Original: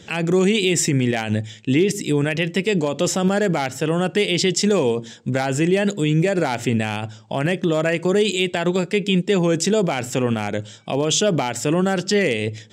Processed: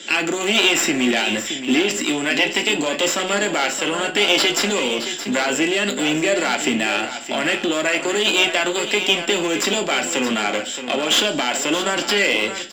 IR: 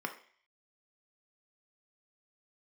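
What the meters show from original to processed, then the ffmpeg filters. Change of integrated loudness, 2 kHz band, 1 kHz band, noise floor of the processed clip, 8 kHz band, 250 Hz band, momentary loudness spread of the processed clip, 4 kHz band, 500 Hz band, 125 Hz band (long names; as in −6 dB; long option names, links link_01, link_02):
+1.5 dB, +6.5 dB, +3.0 dB, −29 dBFS, +3.0 dB, −2.5 dB, 5 LU, +7.5 dB, −2.0 dB, −15.0 dB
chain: -filter_complex "[0:a]acrossover=split=4500[link_01][link_02];[link_02]acompressor=threshold=-39dB:ratio=4:attack=1:release=60[link_03];[link_01][link_03]amix=inputs=2:normalize=0,lowpass=7700,equalizer=frequency=1700:width=3.9:gain=-4.5,acrossover=split=210|3000[link_04][link_05][link_06];[link_05]acompressor=threshold=-22dB:ratio=6[link_07];[link_04][link_07][link_06]amix=inputs=3:normalize=0,crystalizer=i=8.5:c=0,aeval=exprs='clip(val(0),-1,0.0891)':channel_layout=same,aecho=1:1:622:0.316[link_08];[1:a]atrim=start_sample=2205,asetrate=61740,aresample=44100[link_09];[link_08][link_09]afir=irnorm=-1:irlink=0,volume=2.5dB"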